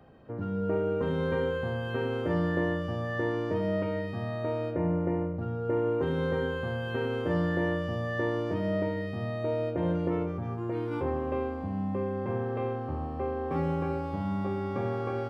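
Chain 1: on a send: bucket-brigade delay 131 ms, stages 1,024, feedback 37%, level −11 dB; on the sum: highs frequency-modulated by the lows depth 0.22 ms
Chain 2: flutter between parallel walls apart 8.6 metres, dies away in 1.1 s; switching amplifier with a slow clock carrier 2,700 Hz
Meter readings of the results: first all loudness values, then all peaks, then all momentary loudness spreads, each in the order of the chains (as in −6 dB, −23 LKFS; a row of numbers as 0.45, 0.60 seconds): −31.0, −30.5 LKFS; −15.5, −16.0 dBFS; 5, 3 LU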